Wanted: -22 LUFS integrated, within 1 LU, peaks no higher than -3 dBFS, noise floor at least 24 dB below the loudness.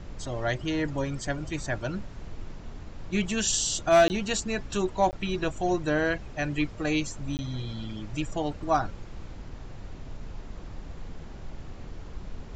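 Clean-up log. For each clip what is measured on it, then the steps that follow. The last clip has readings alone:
dropouts 3; longest dropout 19 ms; noise floor -42 dBFS; noise floor target -53 dBFS; loudness -28.5 LUFS; peak -12.0 dBFS; loudness target -22.0 LUFS
-> interpolate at 4.08/5.11/7.37, 19 ms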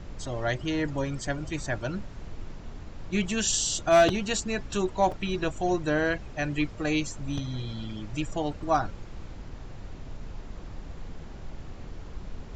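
dropouts 0; noise floor -42 dBFS; noise floor target -53 dBFS
-> noise print and reduce 11 dB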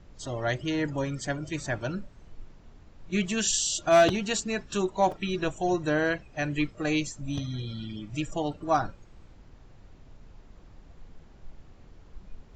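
noise floor -53 dBFS; loudness -28.5 LUFS; peak -12.5 dBFS; loudness target -22.0 LUFS
-> gain +6.5 dB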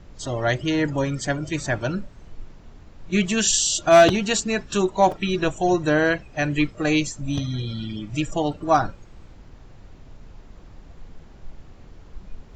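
loudness -22.0 LUFS; peak -6.0 dBFS; noise floor -46 dBFS

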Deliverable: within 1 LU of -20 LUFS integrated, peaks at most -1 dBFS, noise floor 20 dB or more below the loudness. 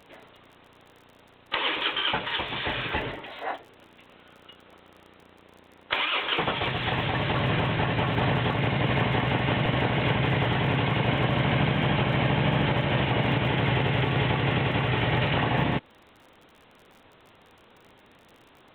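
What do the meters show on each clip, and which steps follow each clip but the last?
ticks 41/s; loudness -25.5 LUFS; peak -10.5 dBFS; loudness target -20.0 LUFS
-> de-click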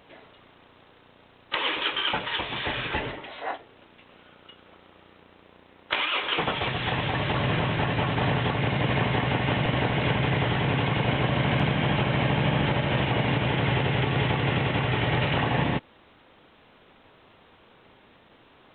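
ticks 0.16/s; loudness -25.5 LUFS; peak -10.5 dBFS; loudness target -20.0 LUFS
-> gain +5.5 dB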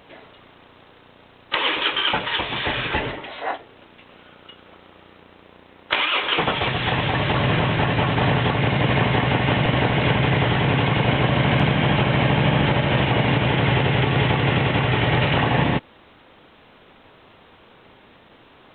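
loudness -20.0 LUFS; peak -5.0 dBFS; noise floor -51 dBFS

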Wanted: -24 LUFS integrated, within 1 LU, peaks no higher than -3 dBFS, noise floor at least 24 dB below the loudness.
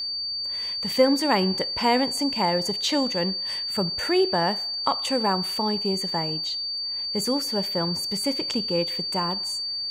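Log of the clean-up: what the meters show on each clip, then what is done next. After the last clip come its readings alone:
steady tone 4600 Hz; tone level -27 dBFS; loudness -24.0 LUFS; peak -6.5 dBFS; loudness target -24.0 LUFS
-> notch 4600 Hz, Q 30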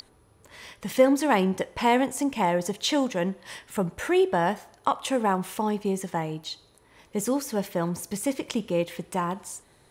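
steady tone none; loudness -26.5 LUFS; peak -7.5 dBFS; loudness target -24.0 LUFS
-> gain +2.5 dB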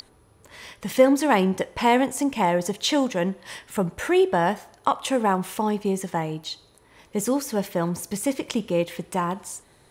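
loudness -24.0 LUFS; peak -5.0 dBFS; noise floor -57 dBFS

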